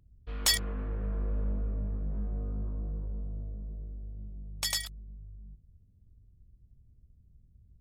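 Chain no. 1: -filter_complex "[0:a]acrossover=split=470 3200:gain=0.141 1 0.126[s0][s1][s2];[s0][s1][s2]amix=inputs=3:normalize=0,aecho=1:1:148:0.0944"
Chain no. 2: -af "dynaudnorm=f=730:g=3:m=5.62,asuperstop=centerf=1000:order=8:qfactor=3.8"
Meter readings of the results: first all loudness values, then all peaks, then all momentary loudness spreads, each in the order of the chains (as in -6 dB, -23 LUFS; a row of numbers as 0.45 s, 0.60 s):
-42.5 LUFS, -22.5 LUFS; -20.0 dBFS, -2.5 dBFS; 24 LU, 15 LU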